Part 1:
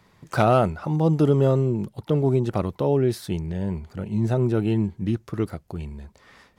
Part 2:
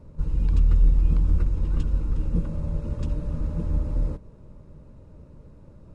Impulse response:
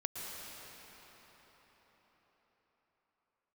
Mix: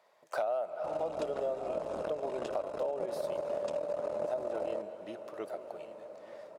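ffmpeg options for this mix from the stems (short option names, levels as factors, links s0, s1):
-filter_complex "[0:a]volume=0.237,asplit=3[s0][s1][s2];[s1]volume=0.299[s3];[s2]volume=0.168[s4];[1:a]aeval=exprs='0.398*(cos(1*acos(clip(val(0)/0.398,-1,1)))-cos(1*PI/2))+0.0447*(cos(8*acos(clip(val(0)/0.398,-1,1)))-cos(8*PI/2))':c=same,adelay=650,volume=1.19[s5];[2:a]atrim=start_sample=2205[s6];[s3][s6]afir=irnorm=-1:irlink=0[s7];[s4]aecho=0:1:1180:1[s8];[s0][s5][s7][s8]amix=inputs=4:normalize=0,highpass=f=610:t=q:w=5.8,acompressor=threshold=0.0282:ratio=6"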